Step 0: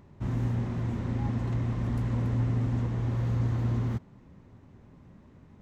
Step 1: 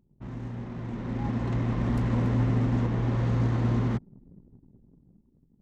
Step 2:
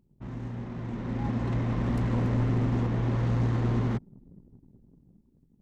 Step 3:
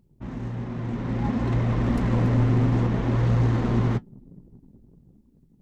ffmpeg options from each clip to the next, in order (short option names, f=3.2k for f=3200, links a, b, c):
-af "anlmdn=0.01,equalizer=f=86:w=2.3:g=-13.5,dynaudnorm=f=220:g=11:m=11.5dB,volume=-5dB"
-af "aeval=exprs='clip(val(0),-1,0.0631)':c=same"
-af "flanger=delay=1.4:depth=7.4:regen=-58:speed=0.6:shape=triangular,volume=9dB"